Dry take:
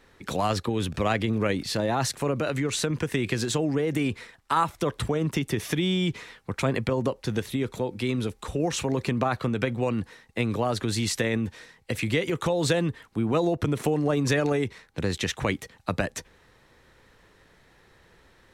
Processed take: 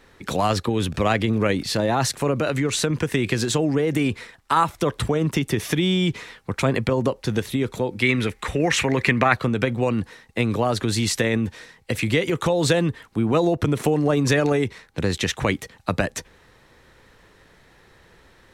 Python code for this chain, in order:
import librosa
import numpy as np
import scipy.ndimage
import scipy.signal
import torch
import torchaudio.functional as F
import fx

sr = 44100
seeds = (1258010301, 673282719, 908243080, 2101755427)

y = fx.peak_eq(x, sr, hz=2000.0, db=15.0, octaves=0.86, at=(8.02, 9.34))
y = y * librosa.db_to_amplitude(4.5)